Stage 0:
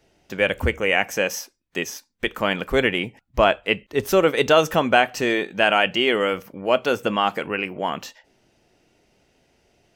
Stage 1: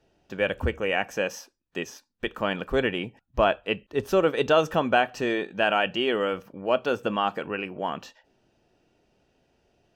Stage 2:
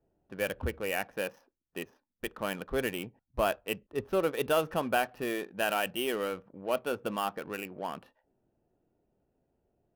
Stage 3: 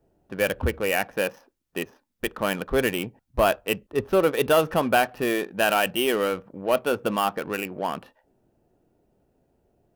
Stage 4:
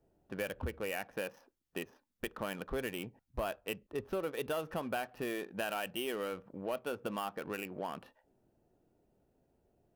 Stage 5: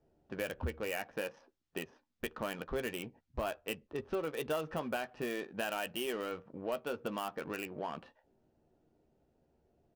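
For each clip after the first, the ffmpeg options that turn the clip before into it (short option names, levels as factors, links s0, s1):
-af "lowpass=f=3200:p=1,bandreject=f=2100:w=6.1,volume=0.631"
-af "adynamicsmooth=sensitivity=7:basefreq=990,aexciter=amount=5.5:drive=4.6:freq=9800,volume=0.447"
-af "asoftclip=type=tanh:threshold=0.141,volume=2.82"
-af "acompressor=threshold=0.0316:ratio=3,volume=0.473"
-filter_complex "[0:a]asplit=2[s0][s1];[s1]adelay=13,volume=0.355[s2];[s0][s2]amix=inputs=2:normalize=0,acrossover=split=7300[s3][s4];[s4]acrusher=bits=6:mix=0:aa=0.000001[s5];[s3][s5]amix=inputs=2:normalize=0"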